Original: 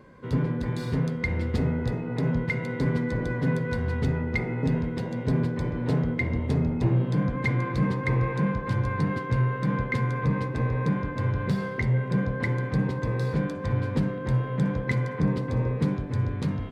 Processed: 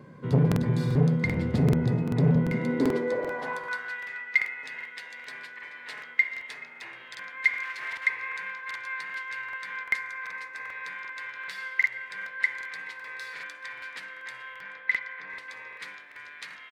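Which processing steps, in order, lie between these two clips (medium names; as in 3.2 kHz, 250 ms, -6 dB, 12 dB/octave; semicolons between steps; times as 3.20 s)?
7.63–8.06 s: comb filter that takes the minimum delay 7.7 ms; 9.83–10.65 s: peaking EQ 3.1 kHz -6.5 dB 0.77 oct; high-pass sweep 140 Hz -> 1.9 kHz, 2.33–4.02 s; 14.54–15.30 s: distance through air 180 m; delay 430 ms -21 dB; crackling interface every 0.39 s, samples 2048, repeat, from 0.47 s; transformer saturation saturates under 300 Hz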